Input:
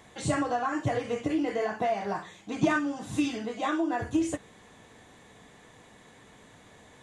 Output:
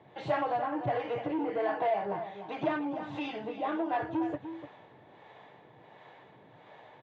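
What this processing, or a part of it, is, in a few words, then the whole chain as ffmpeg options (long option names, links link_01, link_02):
guitar amplifier with harmonic tremolo: -filter_complex "[0:a]asettb=1/sr,asplit=3[link_01][link_02][link_03];[link_01]atrim=end=1.464[link_04];[link_02]atrim=start=1.46:end=1.94,asetpts=PTS-STARTPTS,afade=type=in:duration=0.004:curve=qsin,afade=type=out:start_time=0.476:duration=0.004:curve=qsin,aecho=1:1:6.3:0.45,atrim=end_sample=21168[link_05];[link_03]atrim=start=1.936[link_06];[link_04][link_05]acrossfade=duration=0.004:curve1=hsin:curve2=qsin[link_07];[link_07][link_06]acrossfade=duration=0.004:curve1=qsin:curve2=hsin,acrossover=split=440[link_08][link_09];[link_08]aeval=exprs='val(0)*(1-0.7/2+0.7/2*cos(2*PI*1.4*n/s))':channel_layout=same[link_10];[link_09]aeval=exprs='val(0)*(1-0.7/2-0.7/2*cos(2*PI*1.4*n/s))':channel_layout=same[link_11];[link_10][link_11]amix=inputs=2:normalize=0,asoftclip=type=tanh:threshold=-29dB,highpass=110,highpass=85,equalizer=frequency=130:width_type=q:width=4:gain=6,equalizer=frequency=230:width_type=q:width=4:gain=-7,equalizer=frequency=360:width_type=q:width=4:gain=4,equalizer=frequency=600:width_type=q:width=4:gain=7,equalizer=frequency=860:width_type=q:width=4:gain=9,lowpass=frequency=3500:width=0.5412,lowpass=frequency=3500:width=1.3066,asplit=2[link_12][link_13];[link_13]adelay=297.4,volume=-10dB,highshelf=frequency=4000:gain=-6.69[link_14];[link_12][link_14]amix=inputs=2:normalize=0"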